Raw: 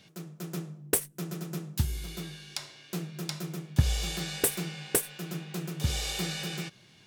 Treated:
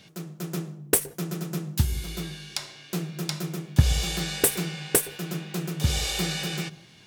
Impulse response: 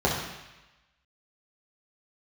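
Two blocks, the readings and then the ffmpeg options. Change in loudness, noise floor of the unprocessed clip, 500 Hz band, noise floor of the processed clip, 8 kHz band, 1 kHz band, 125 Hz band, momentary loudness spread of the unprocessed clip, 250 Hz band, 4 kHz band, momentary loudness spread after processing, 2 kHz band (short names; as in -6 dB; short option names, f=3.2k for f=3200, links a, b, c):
+5.0 dB, -58 dBFS, +5.0 dB, -52 dBFS, +5.0 dB, +5.0 dB, +5.0 dB, 11 LU, +5.0 dB, +5.0 dB, 11 LU, +5.0 dB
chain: -filter_complex "[0:a]asplit=2[a][b];[1:a]atrim=start_sample=2205,atrim=end_sample=3528,adelay=118[c];[b][c]afir=irnorm=-1:irlink=0,volume=-35.5dB[d];[a][d]amix=inputs=2:normalize=0,volume=5dB"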